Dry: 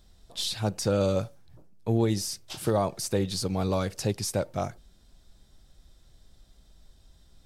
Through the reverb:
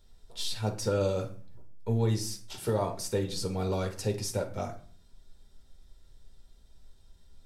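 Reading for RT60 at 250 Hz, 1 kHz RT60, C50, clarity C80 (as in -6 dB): 0.60 s, 0.45 s, 11.5 dB, 16.5 dB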